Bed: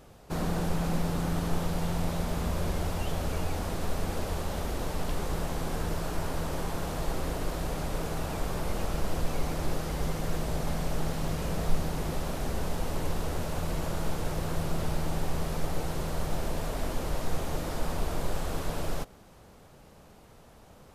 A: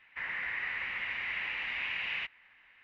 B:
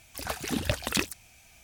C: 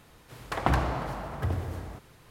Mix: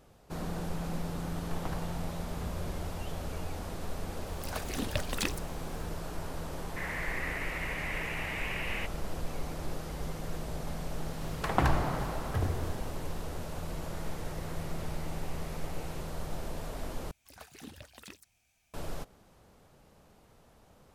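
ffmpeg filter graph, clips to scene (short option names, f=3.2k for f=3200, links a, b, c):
-filter_complex "[3:a]asplit=2[a][b];[2:a]asplit=2[c][d];[1:a]asplit=2[e][f];[0:a]volume=-6.5dB[g];[e]equalizer=f=730:w=0.62:g=9[h];[f]asoftclip=type=hard:threshold=-39dB[i];[d]alimiter=limit=-15.5dB:level=0:latency=1:release=180[j];[g]asplit=2[k][l];[k]atrim=end=17.114[m];[j]atrim=end=1.63,asetpts=PTS-STARTPTS,volume=-17dB[n];[l]atrim=start=18.736[o];[a]atrim=end=2.3,asetpts=PTS-STARTPTS,volume=-16.5dB,afade=t=in:d=0.004:c=hsin,afade=t=out:st=2.296:d=0.004:c=hsin,adelay=990[p];[c]atrim=end=1.63,asetpts=PTS-STARTPTS,volume=-5.5dB,afade=t=in:d=0.004:c=hsin,afade=t=out:st=1.626:d=0.004:c=hsin,adelay=4260[q];[h]atrim=end=2.83,asetpts=PTS-STARTPTS,volume=-5dB,afade=t=in:d=0.004:c=hsin,afade=t=out:st=2.826:d=0.004:c=hsin,adelay=6600[r];[b]atrim=end=2.3,asetpts=PTS-STARTPTS,volume=-1.5dB,afade=t=in:d=0.004:c=hsin,afade=t=out:st=2.296:d=0.004:c=hsin,adelay=10920[s];[i]atrim=end=2.83,asetpts=PTS-STARTPTS,volume=-17.5dB,afade=t=in:d=0.004:c=hsin,afade=t=out:st=2.826:d=0.004:c=hsin,adelay=13750[t];[m][n]acrossfade=d=0.004:c1=hsin:c2=hsin[u];[u][o]acrossfade=d=0.004:c1=hsin:c2=hsin[v];[v][p][q][r][s][t]amix=inputs=6:normalize=0"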